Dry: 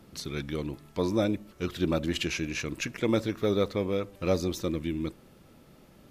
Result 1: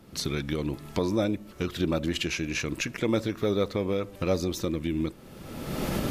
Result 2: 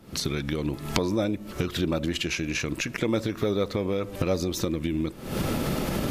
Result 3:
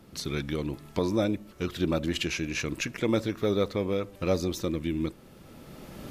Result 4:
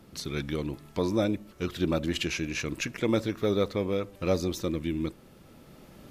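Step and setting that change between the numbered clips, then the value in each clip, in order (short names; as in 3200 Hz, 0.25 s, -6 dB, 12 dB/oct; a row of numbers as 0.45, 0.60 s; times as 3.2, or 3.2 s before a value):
recorder AGC, rising by: 33, 89, 13, 5.2 dB/s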